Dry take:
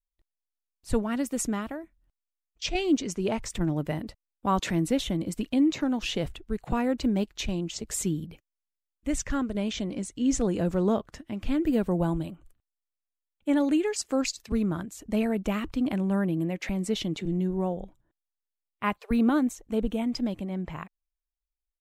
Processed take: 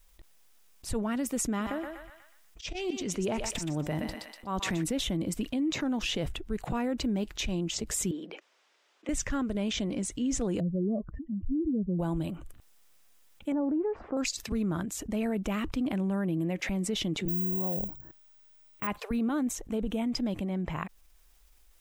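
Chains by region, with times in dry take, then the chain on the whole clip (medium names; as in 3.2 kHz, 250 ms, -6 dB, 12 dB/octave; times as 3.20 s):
1.48–4.84 s: slow attack 225 ms + thinning echo 122 ms, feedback 33%, high-pass 870 Hz, level -6 dB
8.11–9.09 s: high-pass 360 Hz 24 dB/octave + distance through air 150 m
10.60–11.99 s: spectral contrast enhancement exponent 2.9 + low-pass 1.4 kHz
13.52–14.17 s: zero-crossing glitches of -28.5 dBFS + low-pass 1.1 kHz 24 dB/octave
17.28–18.87 s: peaking EQ 130 Hz +4.5 dB 1.9 oct + careless resampling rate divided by 2×, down filtered, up zero stuff
whole clip: band-stop 4.3 kHz, Q 20; peak limiter -20 dBFS; level flattener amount 50%; trim -4 dB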